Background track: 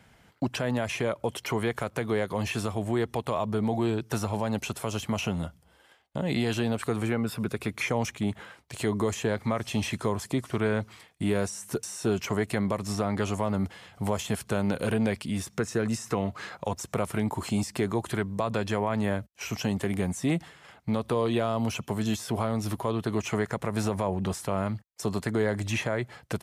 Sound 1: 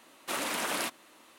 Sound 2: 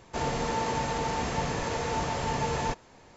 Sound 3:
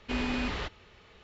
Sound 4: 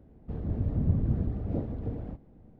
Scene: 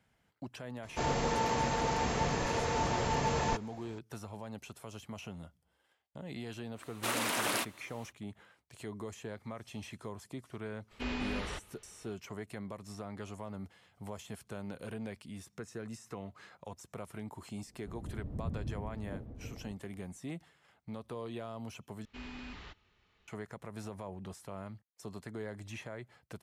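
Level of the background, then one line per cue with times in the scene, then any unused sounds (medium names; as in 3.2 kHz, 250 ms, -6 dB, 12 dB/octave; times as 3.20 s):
background track -15.5 dB
0.83 s: add 2 -2 dB
6.75 s: add 1 -0.5 dB, fades 0.05 s
10.91 s: add 3 -5.5 dB
17.58 s: add 4 -12 dB
22.05 s: replace with 3 -14 dB + peaking EQ 520 Hz -7 dB 0.8 oct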